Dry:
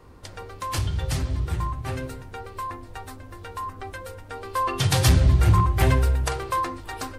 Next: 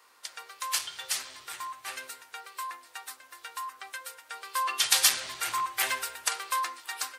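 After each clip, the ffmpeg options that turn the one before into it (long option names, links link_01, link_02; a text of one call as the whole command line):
ffmpeg -i in.wav -af "highpass=1300,highshelf=frequency=4200:gain=6.5" out.wav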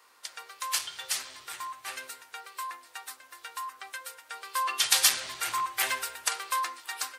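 ffmpeg -i in.wav -af anull out.wav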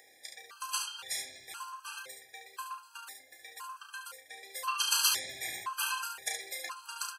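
ffmpeg -i in.wav -af "aecho=1:1:33|71:0.501|0.531,acompressor=mode=upward:threshold=-45dB:ratio=2.5,afftfilt=real='re*gt(sin(2*PI*0.97*pts/sr)*(1-2*mod(floor(b*sr/1024/820),2)),0)':imag='im*gt(sin(2*PI*0.97*pts/sr)*(1-2*mod(floor(b*sr/1024/820),2)),0)':win_size=1024:overlap=0.75,volume=-3dB" out.wav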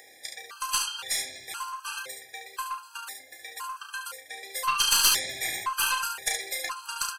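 ffmpeg -i in.wav -af "aeval=exprs='(tanh(11.2*val(0)+0.3)-tanh(0.3))/11.2':channel_layout=same,volume=8.5dB" out.wav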